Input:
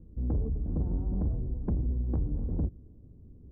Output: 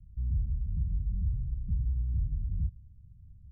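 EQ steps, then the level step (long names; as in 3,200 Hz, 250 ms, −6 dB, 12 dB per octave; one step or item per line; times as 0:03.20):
inverse Chebyshev low-pass filter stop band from 640 Hz, stop band 70 dB
0.0 dB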